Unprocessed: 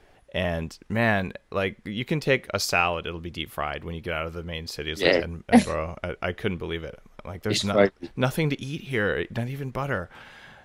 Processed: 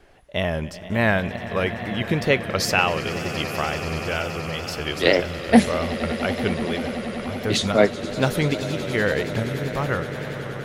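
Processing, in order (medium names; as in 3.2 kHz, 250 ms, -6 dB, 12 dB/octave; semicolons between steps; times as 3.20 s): echo with a slow build-up 95 ms, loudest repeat 8, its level -17.5 dB; wow and flutter 77 cents; trim +2.5 dB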